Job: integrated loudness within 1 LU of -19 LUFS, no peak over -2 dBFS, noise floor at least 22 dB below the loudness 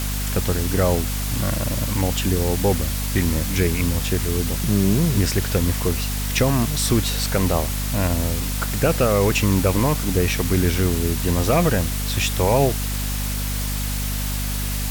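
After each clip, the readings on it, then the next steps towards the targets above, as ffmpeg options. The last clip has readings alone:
hum 50 Hz; harmonics up to 250 Hz; hum level -23 dBFS; noise floor -24 dBFS; noise floor target -43 dBFS; loudness -21.0 LUFS; peak -6.0 dBFS; loudness target -19.0 LUFS
-> -af "bandreject=f=50:t=h:w=4,bandreject=f=100:t=h:w=4,bandreject=f=150:t=h:w=4,bandreject=f=200:t=h:w=4,bandreject=f=250:t=h:w=4"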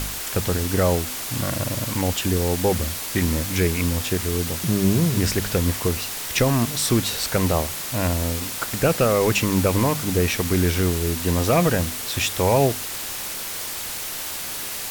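hum none; noise floor -31 dBFS; noise floor target -44 dBFS
-> -af "afftdn=nr=13:nf=-31"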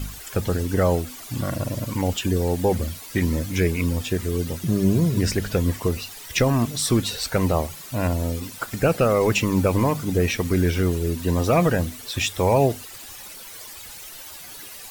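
noise floor -40 dBFS; noise floor target -45 dBFS
-> -af "afftdn=nr=6:nf=-40"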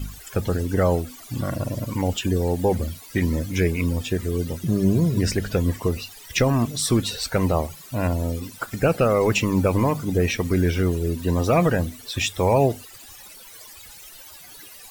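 noise floor -44 dBFS; noise floor target -45 dBFS
-> -af "afftdn=nr=6:nf=-44"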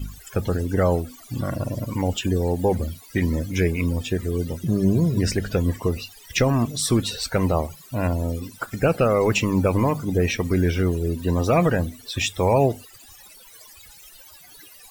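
noise floor -47 dBFS; loudness -23.0 LUFS; peak -7.5 dBFS; loudness target -19.0 LUFS
-> -af "volume=4dB"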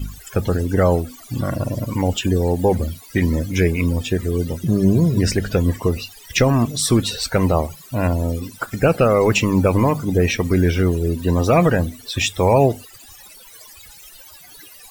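loudness -19.0 LUFS; peak -3.5 dBFS; noise floor -43 dBFS

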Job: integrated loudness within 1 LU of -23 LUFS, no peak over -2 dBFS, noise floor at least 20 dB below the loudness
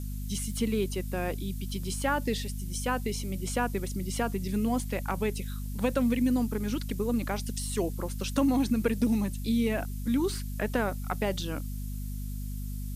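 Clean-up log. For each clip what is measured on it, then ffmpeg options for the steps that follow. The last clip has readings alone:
hum 50 Hz; harmonics up to 250 Hz; hum level -32 dBFS; noise floor -35 dBFS; noise floor target -51 dBFS; loudness -30.5 LUFS; peak -13.5 dBFS; loudness target -23.0 LUFS
-> -af "bandreject=f=50:t=h:w=6,bandreject=f=100:t=h:w=6,bandreject=f=150:t=h:w=6,bandreject=f=200:t=h:w=6,bandreject=f=250:t=h:w=6"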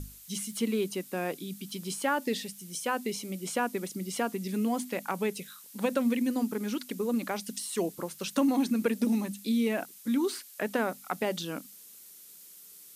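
hum none; noise floor -51 dBFS; noise floor target -52 dBFS
-> -af "afftdn=nr=6:nf=-51"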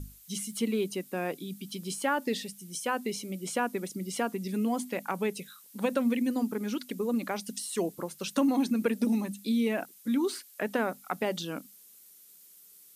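noise floor -55 dBFS; loudness -31.5 LUFS; peak -13.5 dBFS; loudness target -23.0 LUFS
-> -af "volume=8.5dB"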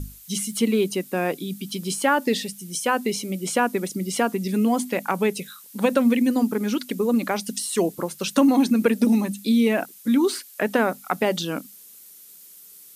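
loudness -23.0 LUFS; peak -5.0 dBFS; noise floor -47 dBFS

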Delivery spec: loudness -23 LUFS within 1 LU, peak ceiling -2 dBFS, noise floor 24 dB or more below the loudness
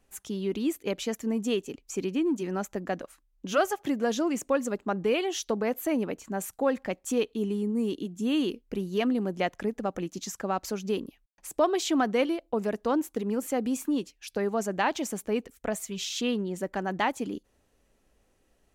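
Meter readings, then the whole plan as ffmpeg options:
loudness -30.0 LUFS; peak -12.5 dBFS; loudness target -23.0 LUFS
-> -af "volume=7dB"

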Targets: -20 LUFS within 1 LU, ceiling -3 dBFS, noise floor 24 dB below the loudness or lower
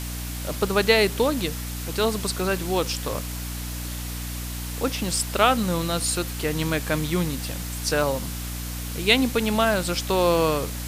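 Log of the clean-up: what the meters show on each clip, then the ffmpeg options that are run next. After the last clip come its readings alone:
hum 60 Hz; harmonics up to 300 Hz; hum level -30 dBFS; noise floor -32 dBFS; noise floor target -49 dBFS; loudness -24.5 LUFS; peak -2.5 dBFS; loudness target -20.0 LUFS
-> -af "bandreject=f=60:t=h:w=4,bandreject=f=120:t=h:w=4,bandreject=f=180:t=h:w=4,bandreject=f=240:t=h:w=4,bandreject=f=300:t=h:w=4"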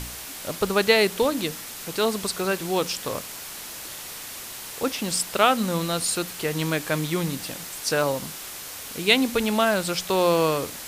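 hum none; noise floor -38 dBFS; noise floor target -49 dBFS
-> -af "afftdn=nr=11:nf=-38"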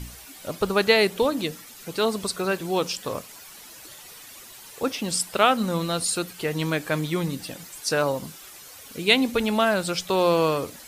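noise floor -45 dBFS; noise floor target -48 dBFS
-> -af "afftdn=nr=6:nf=-45"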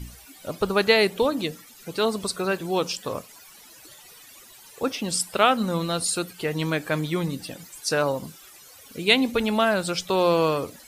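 noise floor -49 dBFS; loudness -24.0 LUFS; peak -3.0 dBFS; loudness target -20.0 LUFS
-> -af "volume=4dB,alimiter=limit=-3dB:level=0:latency=1"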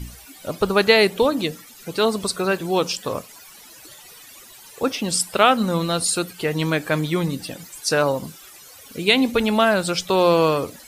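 loudness -20.5 LUFS; peak -3.0 dBFS; noise floor -45 dBFS

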